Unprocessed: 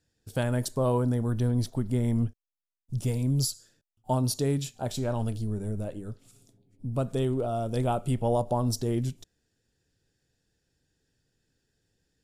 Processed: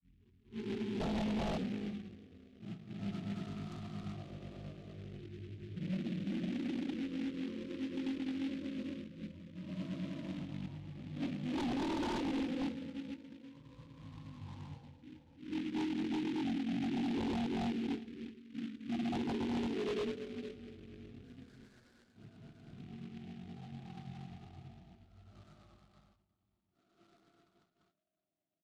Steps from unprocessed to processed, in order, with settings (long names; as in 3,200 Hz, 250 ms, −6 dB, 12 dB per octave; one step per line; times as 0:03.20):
rippled gain that drifts along the octave scale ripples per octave 1.1, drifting −0.51 Hz, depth 14 dB
source passing by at 0:03.81, 38 m/s, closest 8.5 metres
harmonic and percussive parts rebalanced harmonic −8 dB
extreme stretch with random phases 4.5×, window 0.10 s, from 0:06.71
four-pole ladder band-pass 880 Hz, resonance 35%
in parallel at −10 dB: sample-and-hold swept by an LFO 11×, swing 160% 0.25 Hz
on the sum: granular cloud, pitch spread up and down by 0 semitones
sine wavefolder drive 13 dB, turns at −49 dBFS
high-frequency loss of the air 300 metres
on a send: single-tap delay 153 ms −23 dB
on the sum: wrong playback speed 78 rpm record played at 33 rpm
short delay modulated by noise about 2,400 Hz, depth 0.083 ms
level +18 dB